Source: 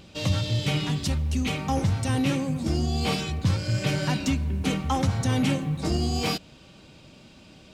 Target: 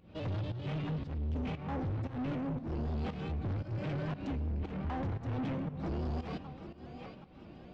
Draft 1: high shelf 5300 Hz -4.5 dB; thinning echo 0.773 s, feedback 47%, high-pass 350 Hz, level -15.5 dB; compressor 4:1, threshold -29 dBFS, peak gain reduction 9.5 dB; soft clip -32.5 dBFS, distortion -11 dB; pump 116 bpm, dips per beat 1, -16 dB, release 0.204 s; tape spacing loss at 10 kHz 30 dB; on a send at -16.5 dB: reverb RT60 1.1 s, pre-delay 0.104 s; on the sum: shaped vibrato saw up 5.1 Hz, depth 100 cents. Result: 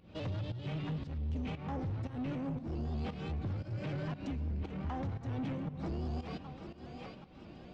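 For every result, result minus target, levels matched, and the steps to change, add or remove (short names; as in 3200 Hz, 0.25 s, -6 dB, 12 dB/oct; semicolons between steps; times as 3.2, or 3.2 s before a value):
compressor: peak gain reduction +9.5 dB; 4000 Hz band +2.0 dB
remove: compressor 4:1, threshold -29 dBFS, peak gain reduction 9.5 dB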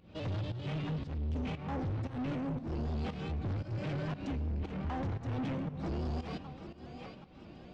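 4000 Hz band +2.5 dB
change: high shelf 5300 Hz -14.5 dB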